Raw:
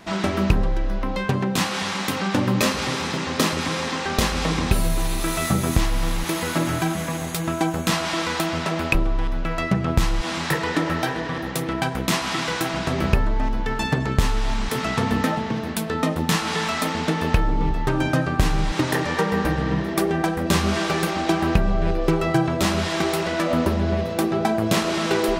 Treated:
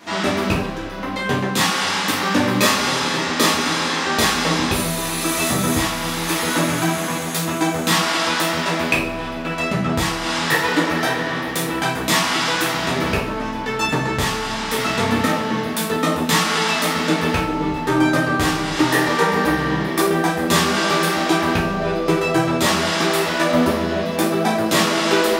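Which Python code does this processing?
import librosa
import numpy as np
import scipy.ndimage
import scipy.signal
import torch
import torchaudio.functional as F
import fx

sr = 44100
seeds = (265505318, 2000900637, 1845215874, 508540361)

y = fx.highpass(x, sr, hz=320.0, slope=6)
y = fx.rev_double_slope(y, sr, seeds[0], early_s=0.43, late_s=1.9, knee_db=-18, drr_db=-5.5)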